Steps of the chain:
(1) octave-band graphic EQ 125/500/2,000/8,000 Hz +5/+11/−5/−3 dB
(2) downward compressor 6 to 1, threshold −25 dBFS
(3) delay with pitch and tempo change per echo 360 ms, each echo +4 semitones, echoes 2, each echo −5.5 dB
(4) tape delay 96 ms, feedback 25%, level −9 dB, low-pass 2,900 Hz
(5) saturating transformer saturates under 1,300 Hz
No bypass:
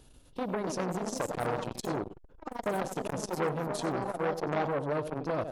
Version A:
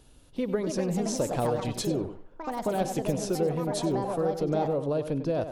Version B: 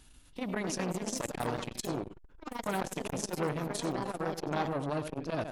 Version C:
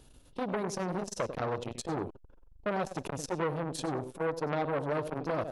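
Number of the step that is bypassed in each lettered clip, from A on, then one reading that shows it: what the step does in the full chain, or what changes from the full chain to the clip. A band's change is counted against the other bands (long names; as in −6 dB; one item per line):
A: 5, change in crest factor −3.5 dB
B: 1, 8 kHz band +4.0 dB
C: 3, change in integrated loudness −1.0 LU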